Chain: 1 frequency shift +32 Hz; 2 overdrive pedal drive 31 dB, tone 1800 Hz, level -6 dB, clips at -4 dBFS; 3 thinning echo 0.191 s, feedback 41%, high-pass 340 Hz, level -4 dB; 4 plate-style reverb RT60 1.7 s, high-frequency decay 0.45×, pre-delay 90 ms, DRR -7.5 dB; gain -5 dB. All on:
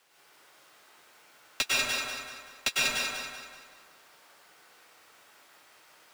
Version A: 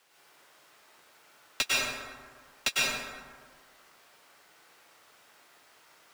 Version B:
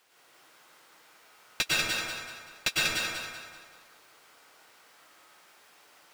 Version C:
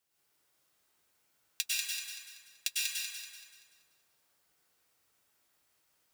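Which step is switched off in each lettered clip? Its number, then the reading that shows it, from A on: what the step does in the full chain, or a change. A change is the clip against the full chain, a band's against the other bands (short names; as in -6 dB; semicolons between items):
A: 3, echo-to-direct 9.5 dB to 7.5 dB; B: 1, 125 Hz band +6.5 dB; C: 2, crest factor change +10.5 dB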